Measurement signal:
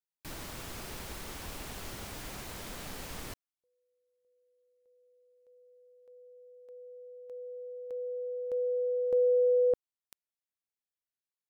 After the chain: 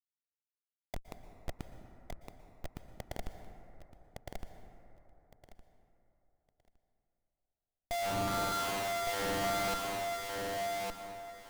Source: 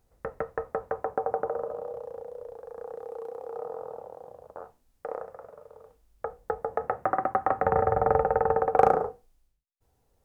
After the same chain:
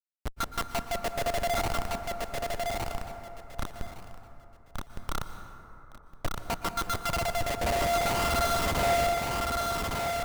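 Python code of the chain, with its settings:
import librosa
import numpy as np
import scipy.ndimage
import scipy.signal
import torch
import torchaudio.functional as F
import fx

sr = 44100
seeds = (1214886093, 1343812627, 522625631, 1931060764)

y = np.r_[np.sort(x[:len(x) // 64 * 64].reshape(-1, 64), axis=1).ravel(), x[len(x) // 64 * 64:]]
y = fx.env_lowpass(y, sr, base_hz=480.0, full_db=-22.0)
y = fx.tilt_shelf(y, sr, db=-9.5, hz=1400.0)
y = fx.leveller(y, sr, passes=5)
y = fx.rider(y, sr, range_db=5, speed_s=2.0)
y = fx.wah_lfo(y, sr, hz=0.62, low_hz=530.0, high_hz=1300.0, q=4.5)
y = fx.schmitt(y, sr, flips_db=-32.5)
y = fx.echo_feedback(y, sr, ms=1162, feedback_pct=19, wet_db=-3.0)
y = fx.rev_plate(y, sr, seeds[0], rt60_s=3.3, hf_ratio=0.35, predelay_ms=105, drr_db=8.0)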